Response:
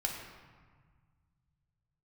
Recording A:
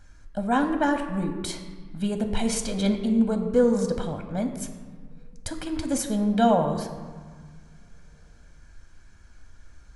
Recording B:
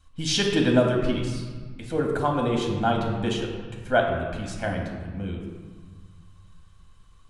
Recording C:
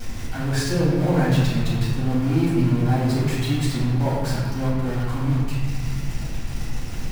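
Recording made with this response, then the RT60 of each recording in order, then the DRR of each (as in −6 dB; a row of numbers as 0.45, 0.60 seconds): B; 1.6, 1.6, 1.6 seconds; 5.5, 0.0, −9.0 decibels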